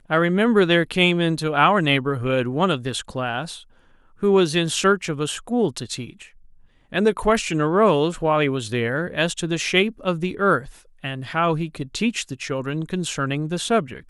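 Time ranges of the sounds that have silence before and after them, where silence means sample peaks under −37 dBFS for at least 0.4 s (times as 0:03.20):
0:04.23–0:06.27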